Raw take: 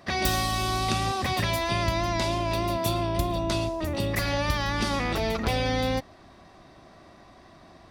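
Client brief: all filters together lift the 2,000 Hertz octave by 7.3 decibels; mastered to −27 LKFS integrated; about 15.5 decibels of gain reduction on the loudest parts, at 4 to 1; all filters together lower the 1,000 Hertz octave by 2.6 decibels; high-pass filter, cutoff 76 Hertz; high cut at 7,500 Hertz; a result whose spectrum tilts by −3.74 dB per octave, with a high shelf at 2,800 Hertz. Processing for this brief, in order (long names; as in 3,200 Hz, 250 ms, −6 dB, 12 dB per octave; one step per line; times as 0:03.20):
high-pass filter 76 Hz
low-pass filter 7,500 Hz
parametric band 1,000 Hz −6 dB
parametric band 2,000 Hz +8 dB
high-shelf EQ 2,800 Hz +5 dB
downward compressor 4 to 1, threshold −40 dBFS
level +12 dB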